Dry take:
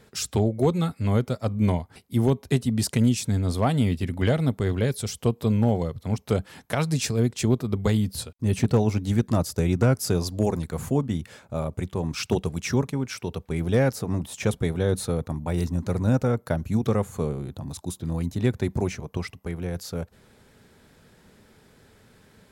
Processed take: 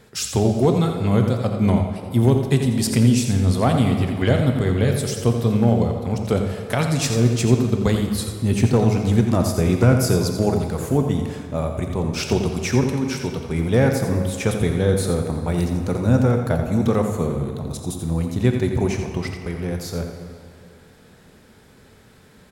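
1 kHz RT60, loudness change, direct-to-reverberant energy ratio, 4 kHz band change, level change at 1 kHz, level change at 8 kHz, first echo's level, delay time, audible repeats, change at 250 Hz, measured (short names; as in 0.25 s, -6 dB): 2.3 s, +5.5 dB, 3.5 dB, +5.0 dB, +5.5 dB, +5.0 dB, -8.5 dB, 86 ms, 1, +5.5 dB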